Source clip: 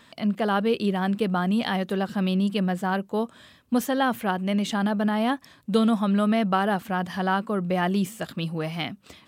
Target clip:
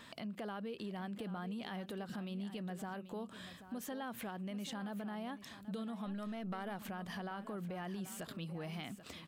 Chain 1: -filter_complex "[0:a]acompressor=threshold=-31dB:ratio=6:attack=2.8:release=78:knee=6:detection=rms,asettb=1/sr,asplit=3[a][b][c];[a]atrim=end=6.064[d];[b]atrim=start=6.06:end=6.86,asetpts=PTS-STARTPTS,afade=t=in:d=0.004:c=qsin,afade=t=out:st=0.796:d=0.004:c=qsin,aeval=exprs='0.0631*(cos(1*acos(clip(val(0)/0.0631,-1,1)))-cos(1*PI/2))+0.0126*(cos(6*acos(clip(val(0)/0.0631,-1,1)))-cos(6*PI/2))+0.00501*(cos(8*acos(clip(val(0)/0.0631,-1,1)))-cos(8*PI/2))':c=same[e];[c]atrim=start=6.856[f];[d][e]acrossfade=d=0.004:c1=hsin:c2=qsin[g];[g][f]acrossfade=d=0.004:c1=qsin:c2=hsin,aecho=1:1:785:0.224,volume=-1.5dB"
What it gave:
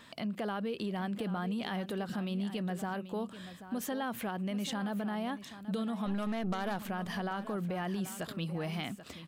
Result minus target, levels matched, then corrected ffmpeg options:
compressor: peak gain reduction -7.5 dB
-filter_complex "[0:a]acompressor=threshold=-40dB:ratio=6:attack=2.8:release=78:knee=6:detection=rms,asettb=1/sr,asplit=3[a][b][c];[a]atrim=end=6.064[d];[b]atrim=start=6.06:end=6.86,asetpts=PTS-STARTPTS,afade=t=in:d=0.004:c=qsin,afade=t=out:st=0.796:d=0.004:c=qsin,aeval=exprs='0.0631*(cos(1*acos(clip(val(0)/0.0631,-1,1)))-cos(1*PI/2))+0.0126*(cos(6*acos(clip(val(0)/0.0631,-1,1)))-cos(6*PI/2))+0.00501*(cos(8*acos(clip(val(0)/0.0631,-1,1)))-cos(8*PI/2))':c=same[e];[c]atrim=start=6.856[f];[d][e]acrossfade=d=0.004:c1=hsin:c2=qsin[g];[g][f]acrossfade=d=0.004:c1=qsin:c2=hsin,aecho=1:1:785:0.224,volume=-1.5dB"

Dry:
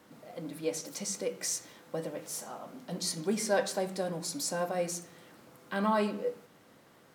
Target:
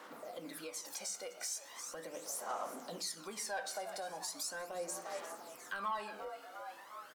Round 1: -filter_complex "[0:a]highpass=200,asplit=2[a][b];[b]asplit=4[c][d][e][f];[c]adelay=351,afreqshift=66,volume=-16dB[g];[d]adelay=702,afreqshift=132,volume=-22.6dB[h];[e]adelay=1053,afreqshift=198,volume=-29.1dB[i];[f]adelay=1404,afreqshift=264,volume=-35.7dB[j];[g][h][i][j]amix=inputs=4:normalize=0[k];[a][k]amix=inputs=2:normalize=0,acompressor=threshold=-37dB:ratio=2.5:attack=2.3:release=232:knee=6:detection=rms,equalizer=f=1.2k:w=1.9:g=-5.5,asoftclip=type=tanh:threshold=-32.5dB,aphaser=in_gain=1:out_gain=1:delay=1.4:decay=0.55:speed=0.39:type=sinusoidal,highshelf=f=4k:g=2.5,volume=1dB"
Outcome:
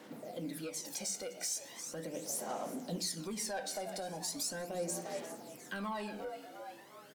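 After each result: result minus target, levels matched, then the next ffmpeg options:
250 Hz band +7.5 dB; 1000 Hz band -4.5 dB; compressor: peak gain reduction -3 dB
-filter_complex "[0:a]highpass=460,asplit=2[a][b];[b]asplit=4[c][d][e][f];[c]adelay=351,afreqshift=66,volume=-16dB[g];[d]adelay=702,afreqshift=132,volume=-22.6dB[h];[e]adelay=1053,afreqshift=198,volume=-29.1dB[i];[f]adelay=1404,afreqshift=264,volume=-35.7dB[j];[g][h][i][j]amix=inputs=4:normalize=0[k];[a][k]amix=inputs=2:normalize=0,acompressor=threshold=-37dB:ratio=2.5:attack=2.3:release=232:knee=6:detection=rms,equalizer=f=1.2k:w=1.9:g=-5.5,asoftclip=type=tanh:threshold=-32.5dB,aphaser=in_gain=1:out_gain=1:delay=1.4:decay=0.55:speed=0.39:type=sinusoidal,highshelf=f=4k:g=2.5,volume=1dB"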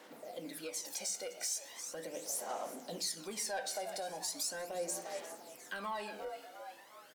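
compressor: peak gain reduction -4 dB; 1000 Hz band -3.5 dB
-filter_complex "[0:a]highpass=460,asplit=2[a][b];[b]asplit=4[c][d][e][f];[c]adelay=351,afreqshift=66,volume=-16dB[g];[d]adelay=702,afreqshift=132,volume=-22.6dB[h];[e]adelay=1053,afreqshift=198,volume=-29.1dB[i];[f]adelay=1404,afreqshift=264,volume=-35.7dB[j];[g][h][i][j]amix=inputs=4:normalize=0[k];[a][k]amix=inputs=2:normalize=0,acompressor=threshold=-44dB:ratio=2.5:attack=2.3:release=232:knee=6:detection=rms,equalizer=f=1.2k:w=1.9:g=-5.5,asoftclip=type=tanh:threshold=-32.5dB,aphaser=in_gain=1:out_gain=1:delay=1.4:decay=0.55:speed=0.39:type=sinusoidal,highshelf=f=4k:g=2.5,volume=1dB"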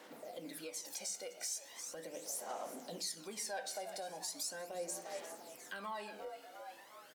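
1000 Hz band -3.5 dB
-filter_complex "[0:a]highpass=460,asplit=2[a][b];[b]asplit=4[c][d][e][f];[c]adelay=351,afreqshift=66,volume=-16dB[g];[d]adelay=702,afreqshift=132,volume=-22.6dB[h];[e]adelay=1053,afreqshift=198,volume=-29.1dB[i];[f]adelay=1404,afreqshift=264,volume=-35.7dB[j];[g][h][i][j]amix=inputs=4:normalize=0[k];[a][k]amix=inputs=2:normalize=0,acompressor=threshold=-44dB:ratio=2.5:attack=2.3:release=232:knee=6:detection=rms,equalizer=f=1.2k:w=1.9:g=5,asoftclip=type=tanh:threshold=-32.5dB,aphaser=in_gain=1:out_gain=1:delay=1.4:decay=0.55:speed=0.39:type=sinusoidal,highshelf=f=4k:g=2.5,volume=1dB"

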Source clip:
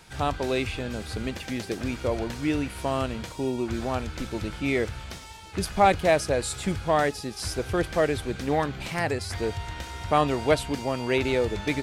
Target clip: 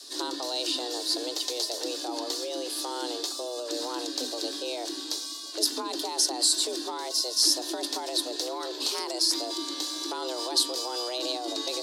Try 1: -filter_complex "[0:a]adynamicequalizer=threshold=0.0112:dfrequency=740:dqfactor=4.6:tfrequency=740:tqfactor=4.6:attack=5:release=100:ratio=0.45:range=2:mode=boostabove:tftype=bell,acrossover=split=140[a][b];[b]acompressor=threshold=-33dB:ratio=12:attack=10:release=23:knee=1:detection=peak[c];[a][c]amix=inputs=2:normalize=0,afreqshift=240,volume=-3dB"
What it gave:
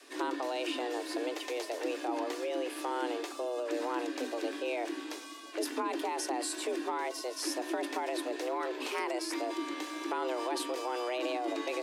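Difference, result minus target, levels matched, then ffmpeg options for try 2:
4000 Hz band -8.0 dB
-filter_complex "[0:a]adynamicequalizer=threshold=0.0112:dfrequency=740:dqfactor=4.6:tfrequency=740:tqfactor=4.6:attack=5:release=100:ratio=0.45:range=2:mode=boostabove:tftype=bell,acrossover=split=140[a][b];[b]acompressor=threshold=-33dB:ratio=12:attack=10:release=23:knee=1:detection=peak,highshelf=f=2.9k:t=q:w=3:g=11.5[c];[a][c]amix=inputs=2:normalize=0,afreqshift=240,volume=-3dB"

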